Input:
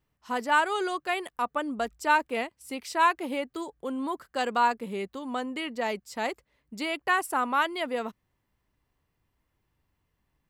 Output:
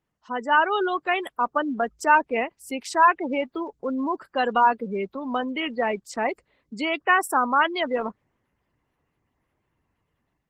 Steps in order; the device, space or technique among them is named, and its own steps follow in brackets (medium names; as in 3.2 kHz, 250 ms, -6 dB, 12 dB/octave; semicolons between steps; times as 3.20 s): noise-suppressed video call (high-pass 110 Hz 6 dB/octave; spectral gate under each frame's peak -20 dB strong; level rider gain up to 6 dB; Opus 16 kbps 48 kHz)